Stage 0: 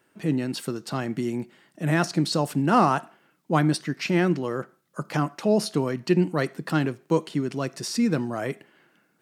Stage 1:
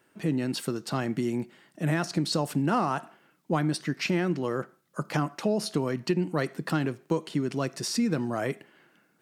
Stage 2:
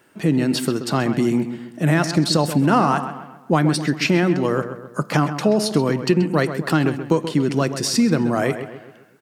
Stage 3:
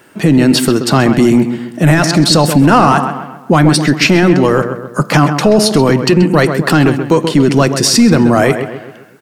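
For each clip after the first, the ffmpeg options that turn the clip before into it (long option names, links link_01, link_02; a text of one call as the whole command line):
ffmpeg -i in.wav -af "acompressor=threshold=-22dB:ratio=6" out.wav
ffmpeg -i in.wav -filter_complex "[0:a]asplit=2[link_01][link_02];[link_02]adelay=131,lowpass=frequency=2900:poles=1,volume=-10dB,asplit=2[link_03][link_04];[link_04]adelay=131,lowpass=frequency=2900:poles=1,volume=0.47,asplit=2[link_05][link_06];[link_06]adelay=131,lowpass=frequency=2900:poles=1,volume=0.47,asplit=2[link_07][link_08];[link_08]adelay=131,lowpass=frequency=2900:poles=1,volume=0.47,asplit=2[link_09][link_10];[link_10]adelay=131,lowpass=frequency=2900:poles=1,volume=0.47[link_11];[link_01][link_03][link_05][link_07][link_09][link_11]amix=inputs=6:normalize=0,volume=9dB" out.wav
ffmpeg -i in.wav -af "apsyclip=13.5dB,volume=-2dB" out.wav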